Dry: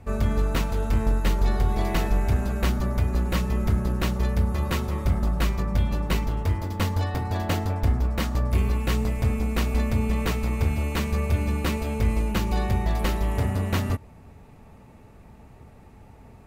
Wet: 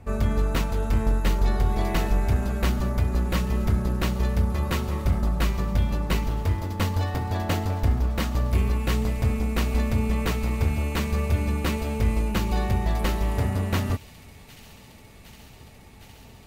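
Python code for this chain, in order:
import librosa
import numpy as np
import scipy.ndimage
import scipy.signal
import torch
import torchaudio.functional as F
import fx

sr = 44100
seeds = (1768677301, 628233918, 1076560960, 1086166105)

y = fx.echo_wet_highpass(x, sr, ms=761, feedback_pct=83, hz=2600.0, wet_db=-15)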